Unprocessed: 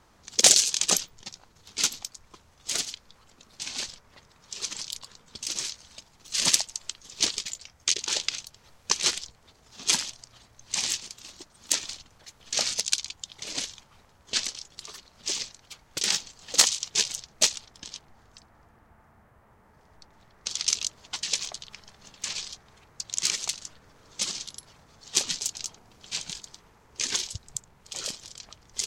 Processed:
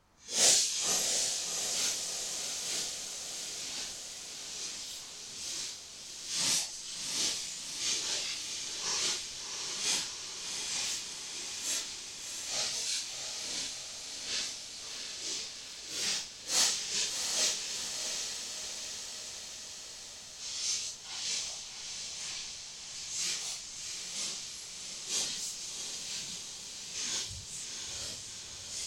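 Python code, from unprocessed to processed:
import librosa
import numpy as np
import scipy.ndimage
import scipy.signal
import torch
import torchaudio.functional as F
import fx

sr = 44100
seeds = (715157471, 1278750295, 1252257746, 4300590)

y = fx.phase_scramble(x, sr, seeds[0], window_ms=200)
y = fx.echo_diffused(y, sr, ms=692, feedback_pct=68, wet_db=-5.5)
y = y * 10.0 ** (-6.5 / 20.0)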